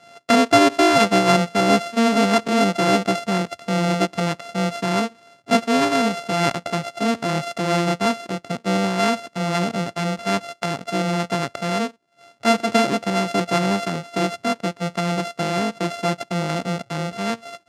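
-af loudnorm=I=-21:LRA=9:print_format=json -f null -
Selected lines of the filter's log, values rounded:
"input_i" : "-21.4",
"input_tp" : "-2.0",
"input_lra" : "6.1",
"input_thresh" : "-31.4",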